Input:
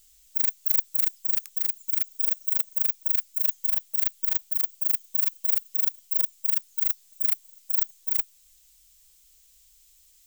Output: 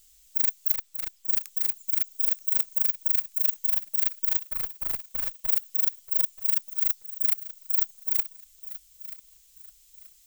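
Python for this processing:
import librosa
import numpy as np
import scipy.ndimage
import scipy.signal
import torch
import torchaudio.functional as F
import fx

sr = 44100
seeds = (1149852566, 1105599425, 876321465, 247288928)

y = fx.high_shelf(x, sr, hz=4500.0, db=-9.5, at=(0.73, 1.28))
y = fx.tube_stage(y, sr, drive_db=21.0, bias=0.45, at=(4.44, 5.48), fade=0.02)
y = fx.echo_feedback(y, sr, ms=931, feedback_pct=32, wet_db=-15)
y = fx.band_squash(y, sr, depth_pct=40, at=(2.55, 3.13))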